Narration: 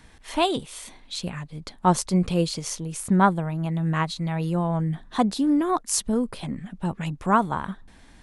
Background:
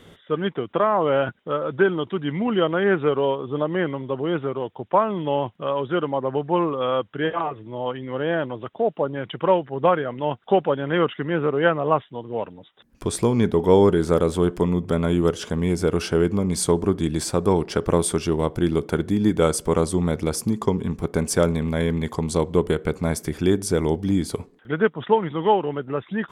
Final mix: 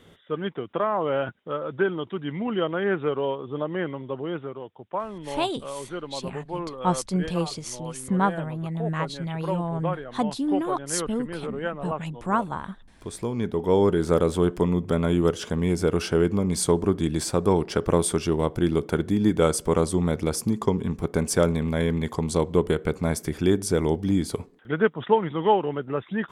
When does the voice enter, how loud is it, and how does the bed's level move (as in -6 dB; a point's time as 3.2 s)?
5.00 s, -4.0 dB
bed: 4.15 s -5 dB
4.72 s -11 dB
13.05 s -11 dB
14.15 s -1.5 dB